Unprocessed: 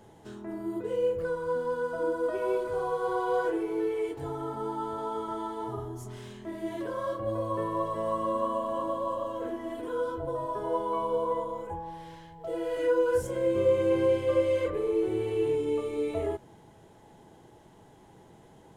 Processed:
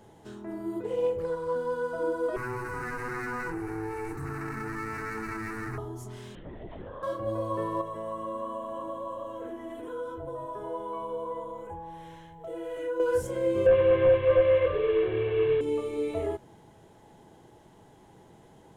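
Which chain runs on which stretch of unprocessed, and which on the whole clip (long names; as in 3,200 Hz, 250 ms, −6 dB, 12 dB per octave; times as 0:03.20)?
0:00.84–0:01.56: notch filter 1,500 Hz, Q 21 + highs frequency-modulated by the lows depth 0.11 ms
0:02.36–0:05.78: lower of the sound and its delayed copy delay 0.49 ms + phaser with its sweep stopped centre 1,400 Hz, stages 4 + envelope flattener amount 70%
0:06.35–0:07.03: downward compressor 4 to 1, threshold −39 dBFS + linear-prediction vocoder at 8 kHz whisper
0:07.81–0:13.00: downward compressor 1.5 to 1, threshold −41 dBFS + parametric band 4,700 Hz −14.5 dB 0.24 octaves
0:13.66–0:15.61: linear delta modulator 16 kbit/s, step −34.5 dBFS + comb filter 1.8 ms, depth 80%
whole clip: no processing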